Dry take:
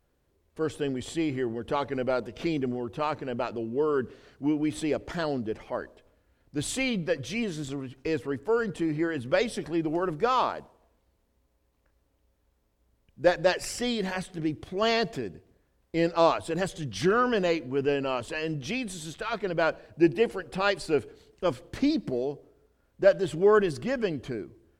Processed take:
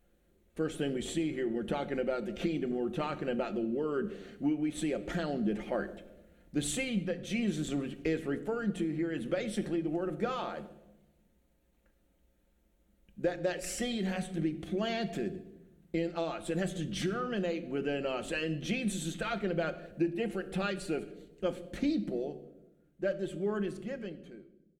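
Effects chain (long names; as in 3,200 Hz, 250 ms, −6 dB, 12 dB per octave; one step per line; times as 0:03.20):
fade-out on the ending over 6.32 s
comb filter 5.7 ms, depth 42%
downward compressor, threshold −29 dBFS, peak gain reduction 15 dB
thirty-one-band graphic EQ 125 Hz −11 dB, 200 Hz +8 dB, 1,000 Hz −12 dB, 5,000 Hz −9 dB
speech leveller within 5 dB 0.5 s
on a send: convolution reverb RT60 0.95 s, pre-delay 3 ms, DRR 11.5 dB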